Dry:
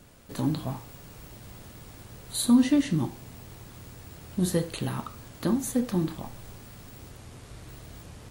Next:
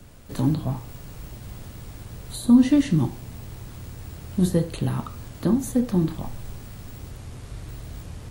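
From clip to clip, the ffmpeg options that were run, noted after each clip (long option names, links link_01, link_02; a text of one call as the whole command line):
ffmpeg -i in.wav -filter_complex "[0:a]acrossover=split=100|970[link_01][link_02][link_03];[link_03]alimiter=level_in=3.5dB:limit=-24dB:level=0:latency=1:release=405,volume=-3.5dB[link_04];[link_01][link_02][link_04]amix=inputs=3:normalize=0,lowshelf=frequency=130:gain=9.5,volume=2.5dB" out.wav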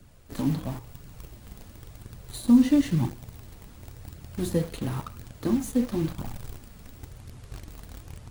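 ffmpeg -i in.wav -filter_complex "[0:a]asplit=2[link_01][link_02];[link_02]acrusher=bits=4:mix=0:aa=0.000001,volume=-6dB[link_03];[link_01][link_03]amix=inputs=2:normalize=0,flanger=delay=0.4:depth=4.4:regen=-40:speed=0.96:shape=triangular,volume=-3.5dB" out.wav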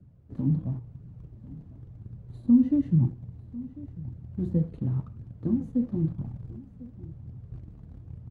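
ffmpeg -i in.wav -af "bandpass=frequency=130:width_type=q:width=1.3:csg=0,aecho=1:1:1047:0.112,volume=4.5dB" out.wav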